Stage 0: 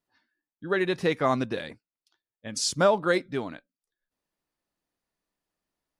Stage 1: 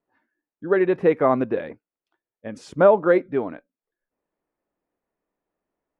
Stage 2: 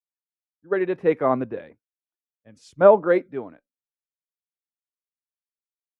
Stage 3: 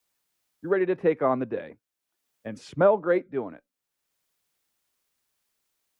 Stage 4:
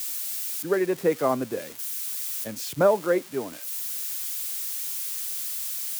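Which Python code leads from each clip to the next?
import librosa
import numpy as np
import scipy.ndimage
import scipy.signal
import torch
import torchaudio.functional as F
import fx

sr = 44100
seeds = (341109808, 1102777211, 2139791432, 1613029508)

y1 = fx.curve_eq(x, sr, hz=(130.0, 450.0, 2400.0, 4600.0), db=(0, 9, -2, -20))
y2 = fx.band_widen(y1, sr, depth_pct=100)
y2 = F.gain(torch.from_numpy(y2), -4.0).numpy()
y3 = fx.band_squash(y2, sr, depth_pct=70)
y3 = F.gain(torch.from_numpy(y3), -2.0).numpy()
y4 = y3 + 0.5 * 10.0 ** (-27.0 / 20.0) * np.diff(np.sign(y3), prepend=np.sign(y3[:1]))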